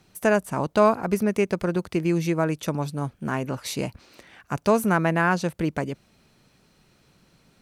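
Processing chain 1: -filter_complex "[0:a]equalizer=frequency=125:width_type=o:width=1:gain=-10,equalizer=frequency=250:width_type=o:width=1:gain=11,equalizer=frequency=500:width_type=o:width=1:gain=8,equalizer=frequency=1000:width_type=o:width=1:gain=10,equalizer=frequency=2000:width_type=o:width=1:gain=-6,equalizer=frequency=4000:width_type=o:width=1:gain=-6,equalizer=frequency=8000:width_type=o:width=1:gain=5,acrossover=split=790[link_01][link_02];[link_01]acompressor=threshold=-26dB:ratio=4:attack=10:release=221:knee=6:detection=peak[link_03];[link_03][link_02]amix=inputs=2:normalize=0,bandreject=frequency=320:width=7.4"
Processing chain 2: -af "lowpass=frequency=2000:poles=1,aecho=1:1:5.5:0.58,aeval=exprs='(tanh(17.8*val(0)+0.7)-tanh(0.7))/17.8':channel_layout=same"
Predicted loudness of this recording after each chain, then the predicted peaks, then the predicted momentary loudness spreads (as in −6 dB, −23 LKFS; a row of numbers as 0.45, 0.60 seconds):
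−23.0, −31.0 LKFS; −3.0, −21.0 dBFS; 12, 7 LU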